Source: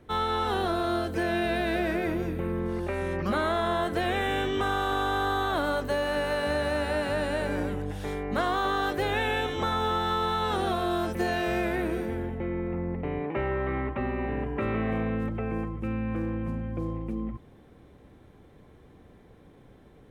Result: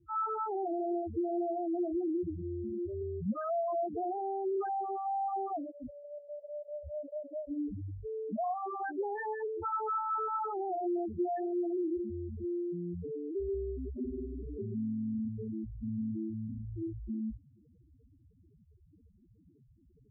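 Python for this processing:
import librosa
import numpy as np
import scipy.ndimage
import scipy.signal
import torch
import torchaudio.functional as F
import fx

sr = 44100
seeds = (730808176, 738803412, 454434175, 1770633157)

y = fx.spec_topn(x, sr, count=2)
y = fx.notch_comb(y, sr, f0_hz=570.0)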